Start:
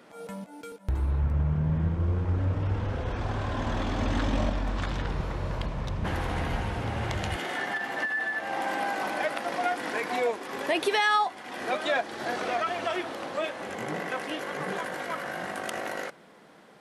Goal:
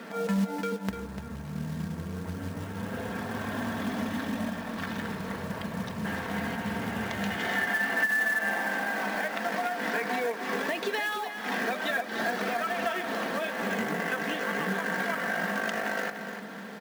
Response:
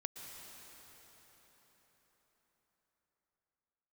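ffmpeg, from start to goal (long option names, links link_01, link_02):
-af "acompressor=threshold=-38dB:ratio=16,highpass=frequency=100:width=0.5412,highpass=frequency=100:width=1.3066,equalizer=frequency=140:width_type=q:width=4:gain=-5,equalizer=frequency=200:width_type=q:width=4:gain=9,equalizer=frequency=1700:width_type=q:width=4:gain=7,lowpass=frequency=6900:width=0.5412,lowpass=frequency=6900:width=1.3066,aecho=1:1:296|592|888:0.355|0.0993|0.0278,acrusher=bits=4:mode=log:mix=0:aa=0.000001,aecho=1:1:4.4:0.42,volume=8.5dB"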